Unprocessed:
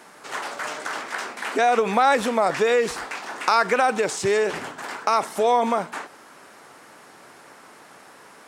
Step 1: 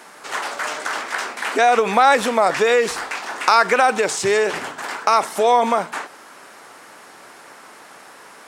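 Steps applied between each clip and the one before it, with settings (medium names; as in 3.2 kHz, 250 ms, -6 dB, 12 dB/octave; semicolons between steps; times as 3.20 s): bass shelf 380 Hz -6 dB; hum notches 50/100/150 Hz; trim +5.5 dB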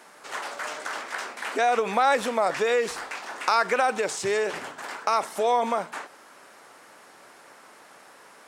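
peaking EQ 560 Hz +2.5 dB 0.4 oct; trim -8 dB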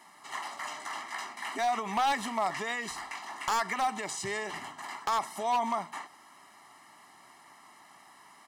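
comb 1 ms, depth 95%; wavefolder -13.5 dBFS; trim -7.5 dB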